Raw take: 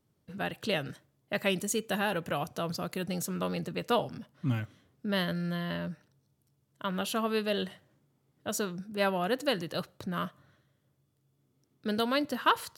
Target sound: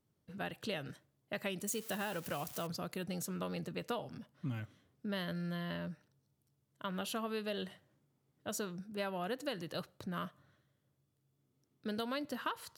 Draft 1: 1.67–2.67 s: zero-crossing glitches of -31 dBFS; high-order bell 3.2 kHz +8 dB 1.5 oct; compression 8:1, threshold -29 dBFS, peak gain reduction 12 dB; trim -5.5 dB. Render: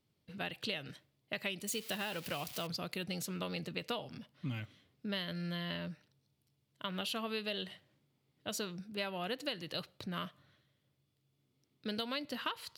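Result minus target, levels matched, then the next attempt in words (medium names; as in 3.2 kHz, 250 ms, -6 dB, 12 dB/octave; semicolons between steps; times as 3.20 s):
4 kHz band +5.0 dB
1.67–2.67 s: zero-crossing glitches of -31 dBFS; compression 8:1, threshold -29 dBFS, peak gain reduction 10 dB; trim -5.5 dB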